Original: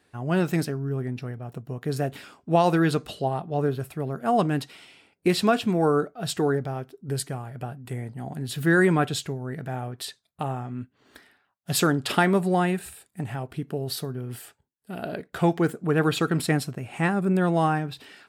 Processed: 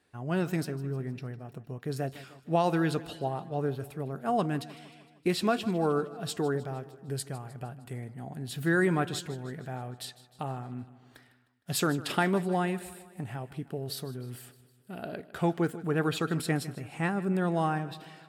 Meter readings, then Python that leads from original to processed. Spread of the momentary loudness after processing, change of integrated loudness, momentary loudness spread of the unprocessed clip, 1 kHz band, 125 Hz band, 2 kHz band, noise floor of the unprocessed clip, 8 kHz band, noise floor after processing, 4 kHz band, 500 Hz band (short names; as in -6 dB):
14 LU, -6.0 dB, 14 LU, -6.0 dB, -6.0 dB, -6.0 dB, -71 dBFS, -6.0 dB, -61 dBFS, -6.0 dB, -6.0 dB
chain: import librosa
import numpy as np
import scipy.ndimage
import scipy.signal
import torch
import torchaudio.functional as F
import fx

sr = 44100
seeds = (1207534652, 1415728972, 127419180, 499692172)

y = fx.echo_feedback(x, sr, ms=154, feedback_pct=57, wet_db=-17.5)
y = y * 10.0 ** (-6.0 / 20.0)